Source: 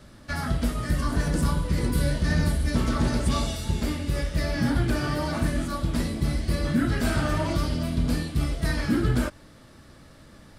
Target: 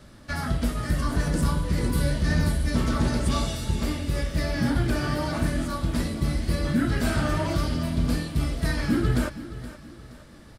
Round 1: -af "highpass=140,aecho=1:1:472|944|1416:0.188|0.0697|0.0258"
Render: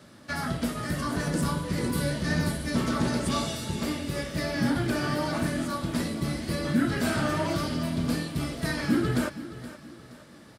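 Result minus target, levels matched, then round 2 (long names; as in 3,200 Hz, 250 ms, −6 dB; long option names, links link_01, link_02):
125 Hz band −2.5 dB
-af "aecho=1:1:472|944|1416:0.188|0.0697|0.0258"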